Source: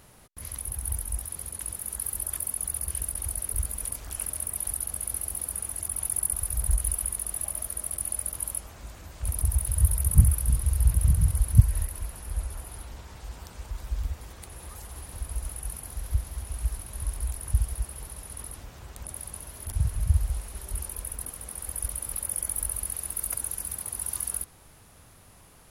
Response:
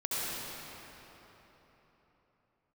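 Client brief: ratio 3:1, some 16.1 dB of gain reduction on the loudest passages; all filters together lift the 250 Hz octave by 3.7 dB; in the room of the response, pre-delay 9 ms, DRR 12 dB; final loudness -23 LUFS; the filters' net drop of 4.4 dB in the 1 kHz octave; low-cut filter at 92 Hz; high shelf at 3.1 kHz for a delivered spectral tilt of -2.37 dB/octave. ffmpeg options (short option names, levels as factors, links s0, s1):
-filter_complex "[0:a]highpass=92,equalizer=f=250:t=o:g=7.5,equalizer=f=1000:t=o:g=-6.5,highshelf=f=3100:g=3,acompressor=threshold=0.0224:ratio=3,asplit=2[s0][s1];[1:a]atrim=start_sample=2205,adelay=9[s2];[s1][s2]afir=irnorm=-1:irlink=0,volume=0.106[s3];[s0][s3]amix=inputs=2:normalize=0,volume=4.22"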